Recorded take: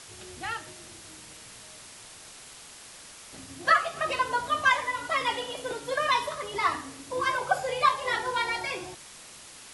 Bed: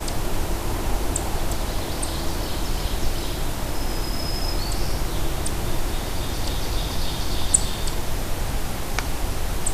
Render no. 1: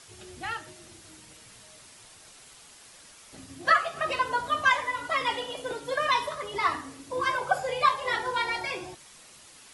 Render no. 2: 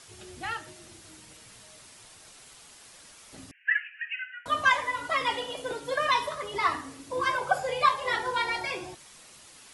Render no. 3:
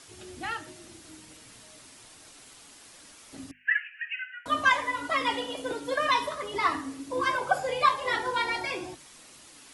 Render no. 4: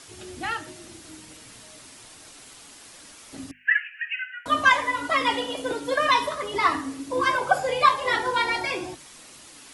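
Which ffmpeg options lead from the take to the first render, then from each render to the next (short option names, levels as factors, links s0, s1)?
-af "afftdn=nr=6:nf=-48"
-filter_complex "[0:a]asettb=1/sr,asplit=3[s0][s1][s2];[s0]atrim=end=3.514[s3];[s1]atrim=start=3.51:end=4.46,asetpts=PTS-STARTPTS,afade=t=in:d=0.004:c=qsin,afade=t=out:st=0.946:d=0.004:c=qsin,asuperpass=centerf=2100:order=20:qfactor=1.5[s4];[s2]atrim=start=4.456[s5];[s3][s4]acrossfade=d=0.004:c1=hsin:c2=qsin[s6];[s6][s5]acrossfade=d=0.004:c1=qsin:c2=hsin"
-af "equalizer=f=280:t=o:w=0.44:g=8.5,bandreject=f=50:t=h:w=6,bandreject=f=100:t=h:w=6,bandreject=f=150:t=h:w=6,bandreject=f=200:t=h:w=6,bandreject=f=250:t=h:w=6"
-af "volume=1.68"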